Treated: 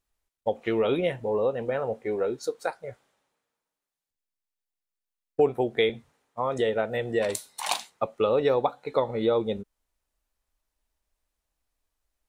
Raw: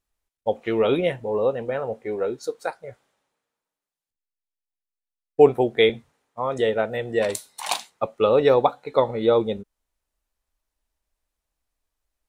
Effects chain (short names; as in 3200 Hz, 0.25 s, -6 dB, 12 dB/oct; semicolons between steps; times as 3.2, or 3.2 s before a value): compressor 2:1, threshold -24 dBFS, peak gain reduction 9 dB